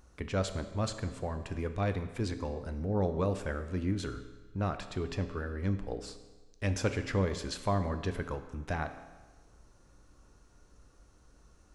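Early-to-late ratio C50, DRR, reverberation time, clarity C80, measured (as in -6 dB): 11.0 dB, 8.5 dB, 1.3 s, 12.5 dB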